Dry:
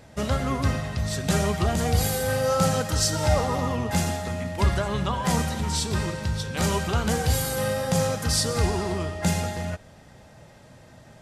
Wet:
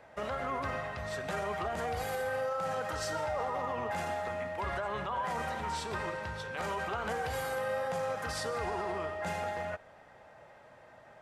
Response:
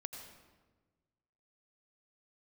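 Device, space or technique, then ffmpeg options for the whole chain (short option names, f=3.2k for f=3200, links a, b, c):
DJ mixer with the lows and highs turned down: -filter_complex "[0:a]acrossover=split=460 2400:gain=0.141 1 0.141[a][b][c];[a][b][c]amix=inputs=3:normalize=0,alimiter=level_in=2.5dB:limit=-24dB:level=0:latency=1:release=34,volume=-2.5dB"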